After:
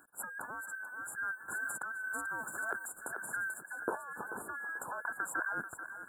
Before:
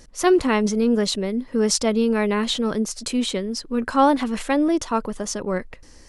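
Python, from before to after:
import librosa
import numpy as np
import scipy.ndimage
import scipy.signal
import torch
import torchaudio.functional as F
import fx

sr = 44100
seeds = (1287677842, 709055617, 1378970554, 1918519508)

y = fx.band_invert(x, sr, width_hz=2000)
y = scipy.signal.sosfilt(scipy.signal.butter(2, 170.0, 'highpass', fs=sr, output='sos'), y)
y = fx.peak_eq(y, sr, hz=7200.0, db=-11.5, octaves=0.96)
y = fx.over_compress(y, sr, threshold_db=-28.0, ratio=-1.0)
y = np.sign(y) * np.maximum(np.abs(y) - 10.0 ** (-50.5 / 20.0), 0.0)
y = fx.brickwall_bandstop(y, sr, low_hz=1700.0, high_hz=7000.0)
y = fx.echo_thinned(y, sr, ms=437, feedback_pct=36, hz=420.0, wet_db=-9.5)
y = fx.band_squash(y, sr, depth_pct=100, at=(1.48, 3.54))
y = y * librosa.db_to_amplitude(-8.0)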